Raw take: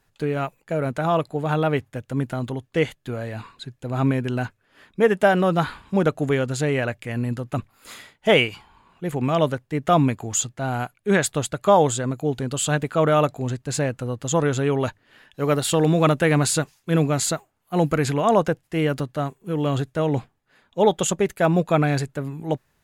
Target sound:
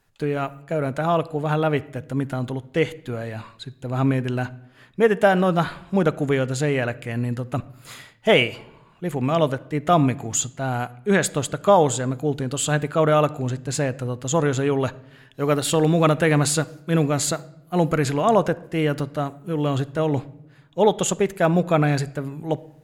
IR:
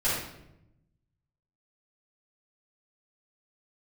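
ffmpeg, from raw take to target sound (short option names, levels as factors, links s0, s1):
-filter_complex "[0:a]asplit=2[s0][s1];[1:a]atrim=start_sample=2205,lowpass=8400[s2];[s1][s2]afir=irnorm=-1:irlink=0,volume=0.0398[s3];[s0][s3]amix=inputs=2:normalize=0"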